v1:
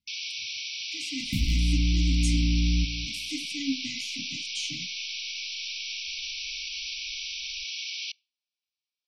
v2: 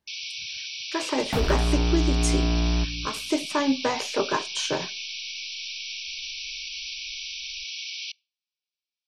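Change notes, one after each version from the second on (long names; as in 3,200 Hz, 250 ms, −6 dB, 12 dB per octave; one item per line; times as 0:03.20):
speech +5.5 dB
master: remove linear-phase brick-wall band-stop 310–2,000 Hz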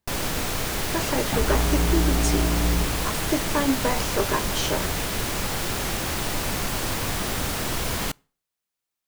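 first sound: remove linear-phase brick-wall band-pass 2,200–6,000 Hz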